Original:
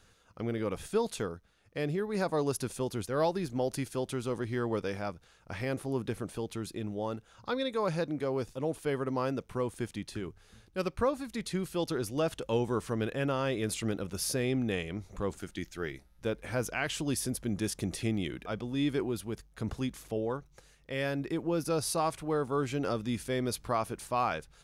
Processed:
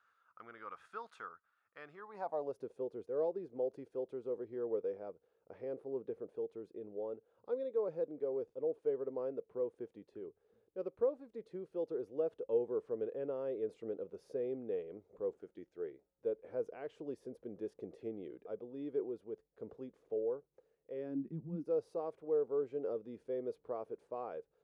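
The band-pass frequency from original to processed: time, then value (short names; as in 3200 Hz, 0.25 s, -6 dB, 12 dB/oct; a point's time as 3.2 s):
band-pass, Q 4.7
1.92 s 1300 Hz
2.61 s 460 Hz
20.93 s 460 Hz
21.49 s 130 Hz
21.69 s 460 Hz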